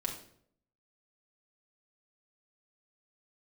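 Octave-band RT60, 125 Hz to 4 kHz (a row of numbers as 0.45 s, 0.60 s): 0.80 s, 0.75 s, 0.70 s, 0.55 s, 0.50 s, 0.45 s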